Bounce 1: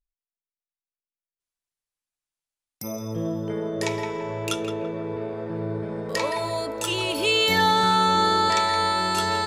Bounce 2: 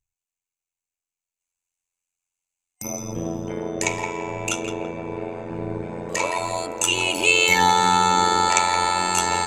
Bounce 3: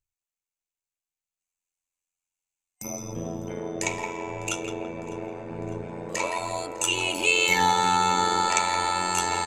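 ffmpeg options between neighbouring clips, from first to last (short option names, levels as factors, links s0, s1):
-af "tremolo=f=88:d=0.788,superequalizer=9b=1.58:12b=2.51:15b=3.98:16b=1.41,volume=1.41"
-af "flanger=delay=2.1:depth=5.7:regen=-75:speed=0.44:shape=sinusoidal,aecho=1:1:603|1206|1809|2412:0.075|0.0427|0.0244|0.0139"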